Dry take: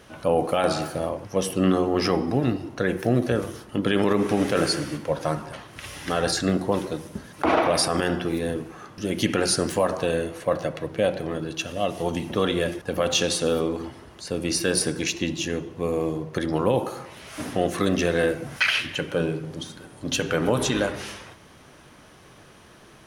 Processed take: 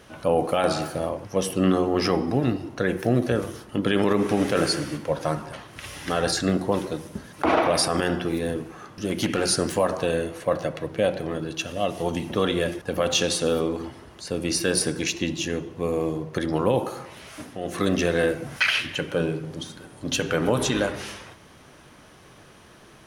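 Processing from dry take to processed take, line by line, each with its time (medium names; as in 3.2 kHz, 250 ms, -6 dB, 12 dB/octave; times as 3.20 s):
8.45–9.49 s: hard clipper -17 dBFS
17.16–17.92 s: dip -10 dB, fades 0.31 s equal-power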